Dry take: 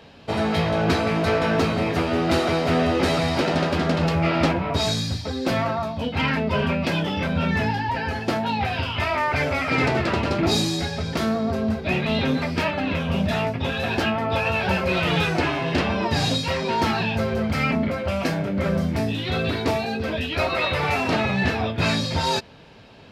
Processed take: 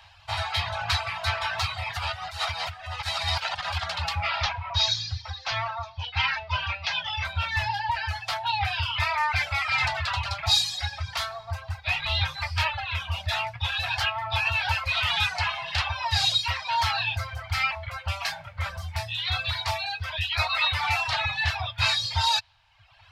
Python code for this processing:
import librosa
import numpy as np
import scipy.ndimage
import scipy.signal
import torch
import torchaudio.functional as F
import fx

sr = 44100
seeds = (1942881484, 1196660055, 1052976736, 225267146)

y = fx.over_compress(x, sr, threshold_db=-23.0, ratio=-0.5, at=(1.97, 3.84))
y = fx.ellip_lowpass(y, sr, hz=6200.0, order=4, stop_db=50, at=(4.43, 7.25))
y = fx.low_shelf(y, sr, hz=120.0, db=8.5, at=(11.99, 12.85))
y = scipy.signal.sosfilt(scipy.signal.ellip(3, 1.0, 60, [100.0, 820.0], 'bandstop', fs=sr, output='sos'), y)
y = fx.dereverb_blind(y, sr, rt60_s=1.1)
y = fx.dynamic_eq(y, sr, hz=3900.0, q=1.5, threshold_db=-44.0, ratio=4.0, max_db=6)